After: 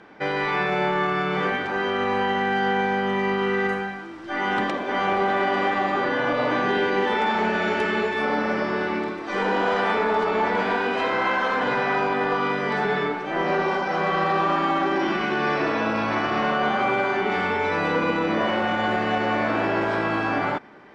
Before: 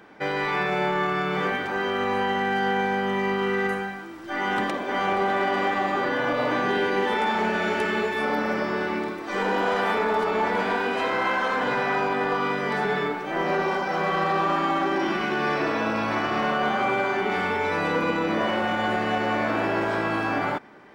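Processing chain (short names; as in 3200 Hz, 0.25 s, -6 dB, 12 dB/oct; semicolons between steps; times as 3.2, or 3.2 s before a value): LPF 6000 Hz 12 dB/oct; gain +1.5 dB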